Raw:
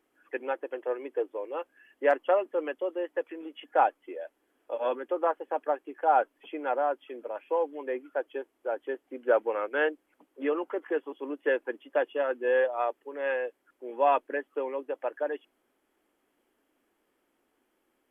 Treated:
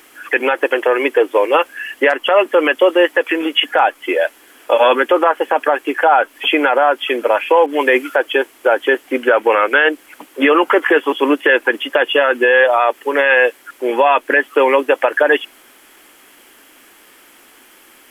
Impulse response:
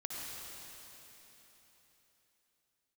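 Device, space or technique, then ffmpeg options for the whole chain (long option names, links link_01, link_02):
mastering chain: -filter_complex "[0:a]equalizer=frequency=600:width_type=o:width=2:gain=-3,acompressor=threshold=-29dB:ratio=3,tiltshelf=frequency=940:gain=-7,alimiter=level_in=30dB:limit=-1dB:release=50:level=0:latency=1,asettb=1/sr,asplit=3[link_01][link_02][link_03];[link_01]atrim=end=7.664[link_04];[link_02]atrim=start=7.66:end=8.16,asetpts=PTS-STARTPTS,afade=type=in:duration=0.004:curve=qsin,afade=type=out:start_time=0.496:duration=0.004:curve=qsin,adynamicequalizer=threshold=0.0501:dfrequency=2600:dqfactor=0.7:tfrequency=2600:tqfactor=0.7:attack=5:release=100:ratio=0.375:range=2.5:mode=boostabove:tftype=highshelf[link_05];[link_03]atrim=start=8.156[link_06];[link_04][link_05]acrossfade=duration=0.004:curve1=hsin:curve2=qsin[link_07];[link_07][link_06]acrossfade=duration=0.004:curve1=qsin:curve2=hsin,volume=-1.5dB"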